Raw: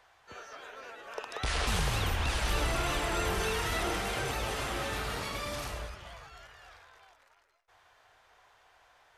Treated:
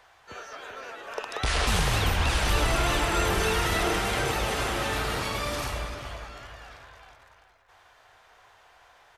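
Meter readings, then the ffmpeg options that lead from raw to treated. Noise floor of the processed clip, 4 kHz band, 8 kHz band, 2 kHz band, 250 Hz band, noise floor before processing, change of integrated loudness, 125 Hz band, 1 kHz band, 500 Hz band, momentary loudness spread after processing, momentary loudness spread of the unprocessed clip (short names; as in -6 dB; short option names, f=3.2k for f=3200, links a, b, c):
-58 dBFS, +6.0 dB, +5.5 dB, +6.0 dB, +6.5 dB, -64 dBFS, +6.0 dB, +6.0 dB, +6.0 dB, +6.0 dB, 17 LU, 17 LU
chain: -filter_complex "[0:a]asplit=2[a][b];[b]adelay=389,lowpass=f=3.8k:p=1,volume=-8.5dB,asplit=2[c][d];[d]adelay=389,lowpass=f=3.8k:p=1,volume=0.38,asplit=2[e][f];[f]adelay=389,lowpass=f=3.8k:p=1,volume=0.38,asplit=2[g][h];[h]adelay=389,lowpass=f=3.8k:p=1,volume=0.38[i];[a][c][e][g][i]amix=inputs=5:normalize=0,volume=5.5dB"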